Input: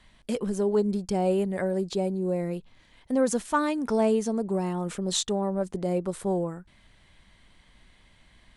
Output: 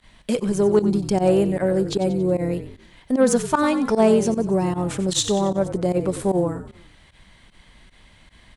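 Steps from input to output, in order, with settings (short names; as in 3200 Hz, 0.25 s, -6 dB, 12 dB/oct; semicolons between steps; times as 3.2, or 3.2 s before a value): added harmonics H 4 -31 dB, 6 -30 dB, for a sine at -12.5 dBFS; frequency-shifting echo 92 ms, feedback 47%, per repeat -42 Hz, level -12 dB; pump 152 bpm, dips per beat 1, -20 dB, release 68 ms; gain +7 dB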